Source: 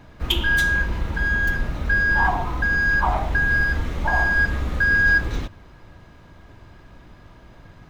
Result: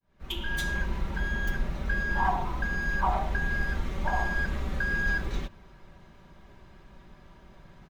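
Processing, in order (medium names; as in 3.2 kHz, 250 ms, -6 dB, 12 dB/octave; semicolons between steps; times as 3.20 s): fade-in on the opening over 0.70 s; comb 5.2 ms, depth 51%; trim -6.5 dB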